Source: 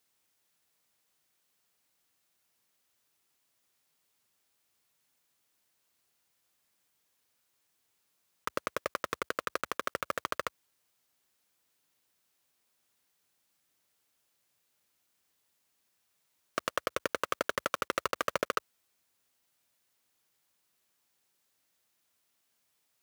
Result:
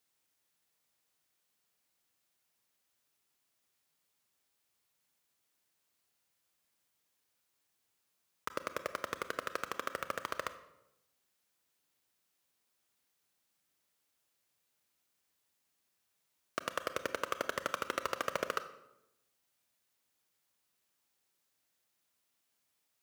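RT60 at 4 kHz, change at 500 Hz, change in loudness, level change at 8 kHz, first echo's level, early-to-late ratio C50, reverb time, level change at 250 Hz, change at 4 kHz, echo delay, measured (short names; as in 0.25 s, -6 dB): 0.65 s, -3.5 dB, -3.5 dB, -3.5 dB, none, 13.0 dB, 0.90 s, -3.5 dB, -3.5 dB, none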